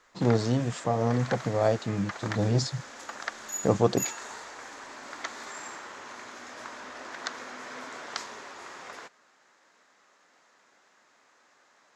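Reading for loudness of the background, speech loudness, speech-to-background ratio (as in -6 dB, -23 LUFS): -39.5 LUFS, -27.5 LUFS, 12.0 dB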